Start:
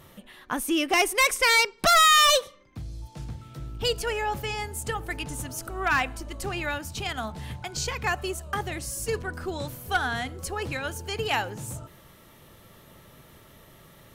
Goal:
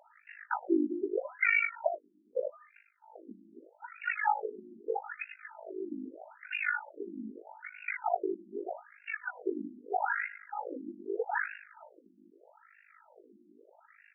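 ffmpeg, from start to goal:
ffmpeg -i in.wav -filter_complex "[0:a]asplit=2[link_01][link_02];[link_02]aecho=0:1:102|204|306|408:0.188|0.0735|0.0287|0.0112[link_03];[link_01][link_03]amix=inputs=2:normalize=0,tremolo=f=51:d=0.947,asuperstop=centerf=1100:order=20:qfactor=5.2,highshelf=frequency=10000:gain=8.5,asplit=2[link_04][link_05];[link_05]adelay=20,volume=-9dB[link_06];[link_04][link_06]amix=inputs=2:normalize=0,alimiter=limit=-17dB:level=0:latency=1:release=33,afftfilt=real='re*between(b*sr/1024,250*pow(2000/250,0.5+0.5*sin(2*PI*0.8*pts/sr))/1.41,250*pow(2000/250,0.5+0.5*sin(2*PI*0.8*pts/sr))*1.41)':imag='im*between(b*sr/1024,250*pow(2000/250,0.5+0.5*sin(2*PI*0.8*pts/sr))/1.41,250*pow(2000/250,0.5+0.5*sin(2*PI*0.8*pts/sr))*1.41)':win_size=1024:overlap=0.75,volume=4.5dB" out.wav

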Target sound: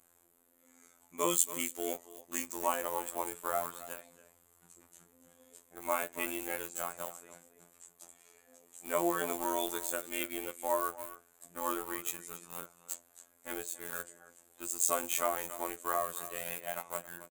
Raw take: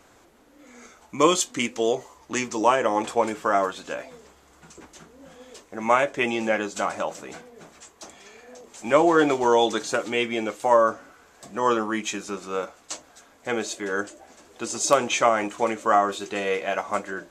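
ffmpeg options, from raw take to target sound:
ffmpeg -i in.wav -filter_complex "[0:a]aecho=1:1:279:0.224,asplit=2[link_01][link_02];[link_02]aeval=exprs='val(0)*gte(abs(val(0)),0.0631)':channel_layout=same,volume=-4dB[link_03];[link_01][link_03]amix=inputs=2:normalize=0,aexciter=amount=12.5:drive=3.1:freq=7900,afftfilt=real='hypot(re,im)*cos(PI*b)':imag='0':win_size=2048:overlap=0.75,volume=-14.5dB" out.wav

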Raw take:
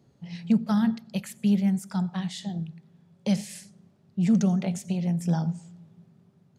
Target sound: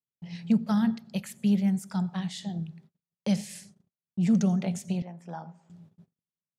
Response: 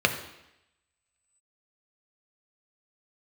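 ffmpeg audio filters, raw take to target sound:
-filter_complex "[0:a]agate=range=-42dB:threshold=-51dB:ratio=16:detection=peak,asettb=1/sr,asplit=3[link_01][link_02][link_03];[link_01]atrim=end=5.024[link_04];[link_02]atrim=start=5.02:end=5.7,asetpts=PTS-STARTPTS,afade=type=in:duration=0.004:curve=qsin,afade=type=out:start_time=0.676:duration=0.004:curve=qsin,bandpass=frequency=1000:width_type=q:width=1.2:csg=0[link_05];[link_03]atrim=start=5.696[link_06];[link_04][link_05]acrossfade=duration=0.004:curve1=hsin:curve2=qsin[link_07];[link_07][link_06]acrossfade=duration=0.004:curve1=qsin:curve2=hsin,volume=-1.5dB"

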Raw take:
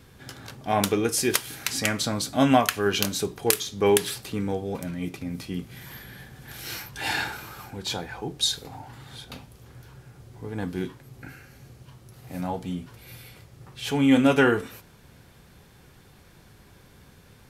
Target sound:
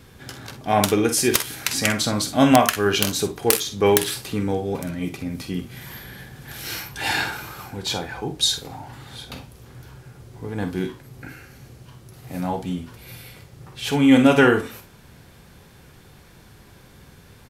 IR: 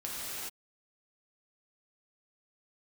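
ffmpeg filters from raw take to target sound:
-af "aecho=1:1:48|61:0.282|0.2,aeval=exprs='(mod(1.78*val(0)+1,2)-1)/1.78':channel_layout=same,volume=4dB"

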